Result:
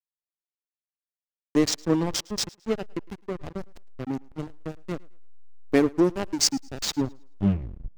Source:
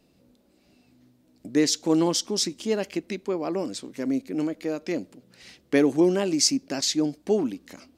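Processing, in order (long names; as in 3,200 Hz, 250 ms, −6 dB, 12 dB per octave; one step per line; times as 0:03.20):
turntable brake at the end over 1.07 s
reverb reduction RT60 1.4 s
slack as between gear wheels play −19.5 dBFS
on a send: feedback echo with a high-pass in the loop 108 ms, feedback 30%, high-pass 210 Hz, level −24 dB
on the sum: level +1.5 dB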